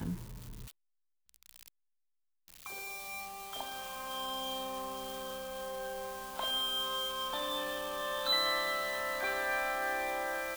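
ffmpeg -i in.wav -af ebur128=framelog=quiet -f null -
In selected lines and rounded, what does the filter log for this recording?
Integrated loudness:
  I:         -35.0 LUFS
  Threshold: -45.8 LUFS
Loudness range:
  LRA:        12.4 LU
  Threshold: -56.2 LUFS
  LRA low:   -45.1 LUFS
  LRA high:  -32.7 LUFS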